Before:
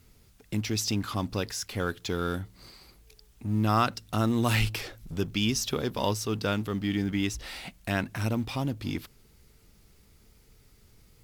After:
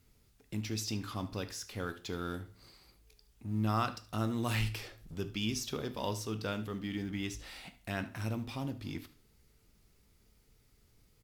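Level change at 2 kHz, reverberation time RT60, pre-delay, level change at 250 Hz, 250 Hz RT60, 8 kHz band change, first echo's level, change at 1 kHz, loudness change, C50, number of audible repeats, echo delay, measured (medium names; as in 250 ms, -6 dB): -8.0 dB, 0.45 s, 13 ms, -8.0 dB, 0.45 s, -8.5 dB, -18.5 dB, -8.0 dB, -7.5 dB, 13.5 dB, 1, 74 ms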